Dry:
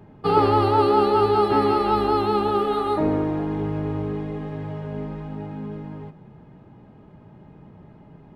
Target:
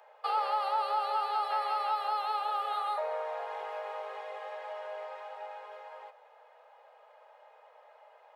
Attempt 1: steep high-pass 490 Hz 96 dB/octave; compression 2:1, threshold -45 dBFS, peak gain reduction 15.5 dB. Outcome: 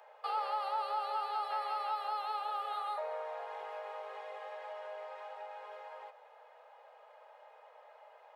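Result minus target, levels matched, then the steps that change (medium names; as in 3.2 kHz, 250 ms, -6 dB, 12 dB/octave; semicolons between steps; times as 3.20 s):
compression: peak gain reduction +5 dB
change: compression 2:1, threshold -35 dBFS, peak gain reduction 10.5 dB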